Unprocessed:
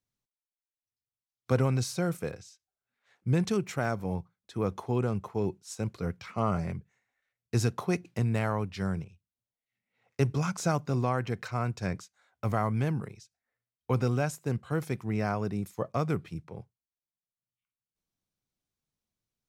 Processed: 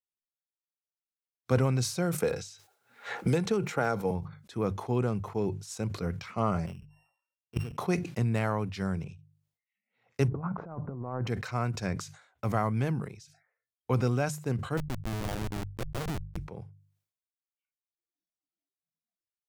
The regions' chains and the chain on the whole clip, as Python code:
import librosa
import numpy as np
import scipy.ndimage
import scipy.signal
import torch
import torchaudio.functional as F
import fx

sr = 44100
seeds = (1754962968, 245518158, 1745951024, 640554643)

y = fx.chain(x, sr, fx.highpass(hz=140.0, slope=6),
    fx.small_body(hz=(470.0, 830.0, 1400.0, 3900.0), ring_ms=55, db=9),
    fx.band_squash(depth_pct=100), at=(2.18, 4.11))
y = fx.chain(y, sr, fx.sample_sort(block=16),
    fx.high_shelf(hz=3500.0, db=-8.5),
    fx.level_steps(step_db=23), at=(6.66, 7.78))
y = fx.chain(y, sr, fx.lowpass(hz=1200.0, slope=24),
    fx.over_compress(threshold_db=-33.0, ratio=-0.5), at=(10.28, 11.27))
y = fx.chain(y, sr, fx.peak_eq(hz=1800.0, db=-9.5, octaves=0.53),
    fx.schmitt(flips_db=-30.5), at=(14.77, 16.37))
y = fx.noise_reduce_blind(y, sr, reduce_db=26)
y = fx.hum_notches(y, sr, base_hz=50, count=3)
y = fx.sustainer(y, sr, db_per_s=100.0)